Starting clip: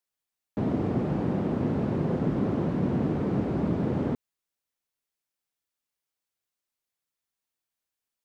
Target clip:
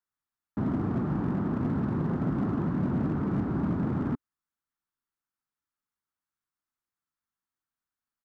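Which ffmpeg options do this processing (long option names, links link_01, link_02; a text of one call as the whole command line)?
ffmpeg -i in.wav -af "firequalizer=gain_entry='entry(280,0);entry(510,-11);entry(880,-1);entry(1300,4);entry(2400,-10)':delay=0.05:min_phase=1,asoftclip=type=hard:threshold=-22.5dB" out.wav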